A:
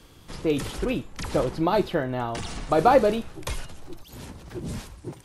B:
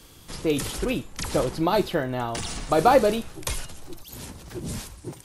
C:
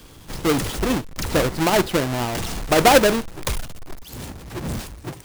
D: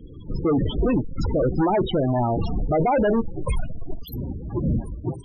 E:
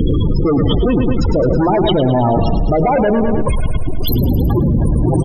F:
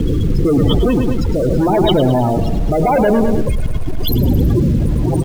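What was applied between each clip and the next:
high-shelf EQ 4,700 Hz +10 dB
each half-wave held at its own peak
gain into a clipping stage and back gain 23.5 dB; spectral peaks only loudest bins 16; level +6 dB
on a send: repeating echo 107 ms, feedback 55%, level −8.5 dB; on the sum: envelope flattener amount 100%; level +4 dB
rotating-speaker cabinet horn 0.9 Hz; in parallel at −7 dB: bit reduction 5 bits; on the sum: level −2 dB

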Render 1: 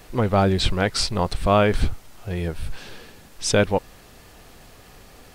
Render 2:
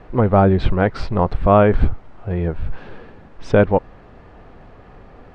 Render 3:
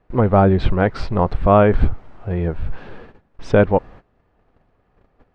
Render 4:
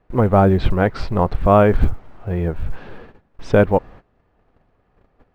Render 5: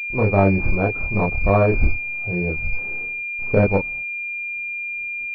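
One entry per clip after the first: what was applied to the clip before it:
low-pass filter 1,400 Hz 12 dB per octave; level +5.5 dB
noise gate −38 dBFS, range −19 dB
floating-point word with a short mantissa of 6 bits
multi-voice chorus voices 2, 0.41 Hz, delay 29 ms, depth 1.8 ms; switching amplifier with a slow clock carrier 2,400 Hz

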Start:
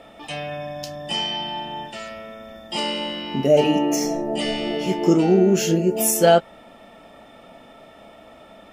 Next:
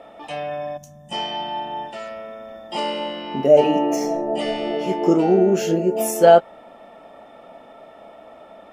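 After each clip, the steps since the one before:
gain on a spectral selection 0:00.77–0:01.12, 250–5,600 Hz −18 dB
parametric band 700 Hz +11.5 dB 2.8 octaves
level −7.5 dB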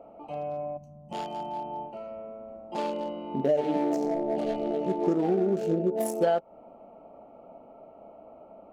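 adaptive Wiener filter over 25 samples
downward compressor 6 to 1, threshold −18 dBFS, peak gain reduction 11 dB
level −3.5 dB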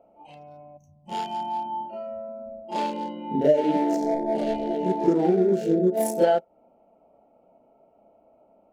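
noise reduction from a noise print of the clip's start 14 dB
parametric band 1,200 Hz −8.5 dB 0.22 octaves
backwards echo 33 ms −6.5 dB
level +4 dB

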